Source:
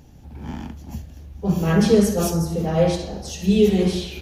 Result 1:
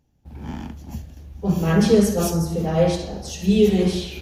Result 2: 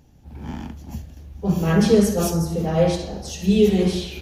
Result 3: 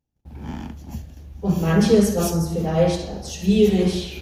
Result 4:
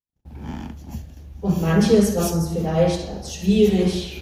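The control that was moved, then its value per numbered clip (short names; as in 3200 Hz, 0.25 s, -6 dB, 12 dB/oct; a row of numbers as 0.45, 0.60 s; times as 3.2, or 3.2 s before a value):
gate, range: -19, -6, -34, -57 dB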